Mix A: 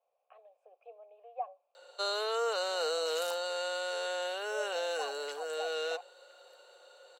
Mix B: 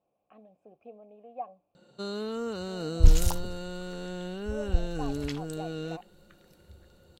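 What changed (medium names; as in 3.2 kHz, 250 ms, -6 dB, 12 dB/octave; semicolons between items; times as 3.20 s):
first sound -8.0 dB; second sound +10.5 dB; master: remove steep high-pass 490 Hz 48 dB/octave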